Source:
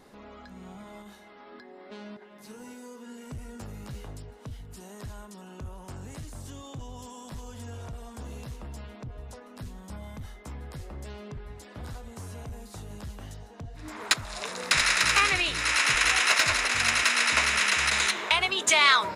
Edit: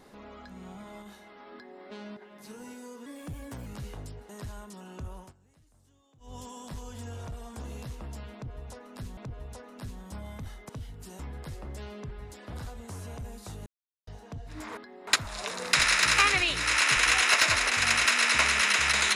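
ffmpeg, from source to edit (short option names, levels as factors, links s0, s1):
-filter_complex "[0:a]asplit=13[s0][s1][s2][s3][s4][s5][s6][s7][s8][s9][s10][s11][s12];[s0]atrim=end=3.064[s13];[s1]atrim=start=3.06:end=3.77,asetpts=PTS-STARTPTS,asetrate=52038,aresample=44100[s14];[s2]atrim=start=3.766:end=4.402[s15];[s3]atrim=start=4.898:end=5.94,asetpts=PTS-STARTPTS,afade=t=out:st=0.892:d=0.15:silence=0.0707946[s16];[s4]atrim=start=5.94:end=6.81,asetpts=PTS-STARTPTS,volume=0.0708[s17];[s5]atrim=start=6.81:end=9.782,asetpts=PTS-STARTPTS,afade=t=in:d=0.15:silence=0.0707946[s18];[s6]atrim=start=8.948:end=10.472[s19];[s7]atrim=start=4.398:end=4.902[s20];[s8]atrim=start=10.468:end=12.94,asetpts=PTS-STARTPTS,afade=t=out:st=2.468:d=0.004:c=hsin[s21];[s9]atrim=start=12.94:end=13.35,asetpts=PTS-STARTPTS,volume=0[s22];[s10]atrim=start=13.35:end=14.052,asetpts=PTS-STARTPTS,afade=t=in:d=0.004:c=hsin[s23];[s11]atrim=start=1.528:end=1.832[s24];[s12]atrim=start=14.048[s25];[s13][s14]acrossfade=d=0.004:c1=hsin:c2=hsin[s26];[s26][s15]acrossfade=d=0.004:c1=hsin:c2=hsin[s27];[s16][s17][s18]concat=n=3:v=0:a=1[s28];[s27][s28]acrossfade=d=0.004:c1=hsin:c2=hsin[s29];[s29][s19]acrossfade=d=0.004:c1=hsin:c2=hsin[s30];[s30][s20]acrossfade=d=0.004:c1=hsin:c2=hsin[s31];[s21][s22][s23]concat=n=3:v=0:a=1[s32];[s31][s32]acrossfade=d=0.004:c1=hsin:c2=hsin[s33];[s33][s24]acrossfade=d=0.004:c1=hsin:c2=hsin[s34];[s34][s25]acrossfade=d=0.004:c1=hsin:c2=hsin"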